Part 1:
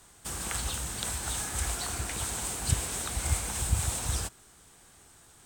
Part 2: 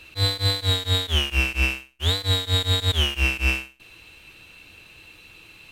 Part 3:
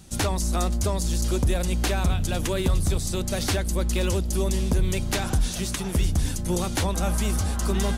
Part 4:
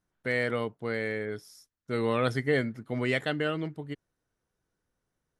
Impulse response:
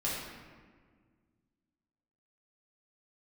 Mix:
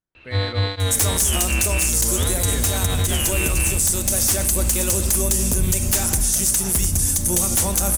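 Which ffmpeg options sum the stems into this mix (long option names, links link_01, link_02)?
-filter_complex "[0:a]equalizer=frequency=12000:width_type=o:width=2.2:gain=8.5,adelay=900,volume=-10dB[link_01];[1:a]lowpass=2500,adelay=150,volume=-1dB[link_02];[2:a]aexciter=amount=7.7:drive=6.1:freq=5700,aeval=exprs='0.335*(abs(mod(val(0)/0.335+3,4)-2)-1)':channel_layout=same,adelay=800,volume=-5dB,asplit=2[link_03][link_04];[link_04]volume=-13dB[link_05];[3:a]volume=-10dB[link_06];[4:a]atrim=start_sample=2205[link_07];[link_05][link_07]afir=irnorm=-1:irlink=0[link_08];[link_01][link_02][link_03][link_06][link_08]amix=inputs=5:normalize=0,dynaudnorm=framelen=120:gausssize=5:maxgain=8dB,alimiter=limit=-10dB:level=0:latency=1:release=76"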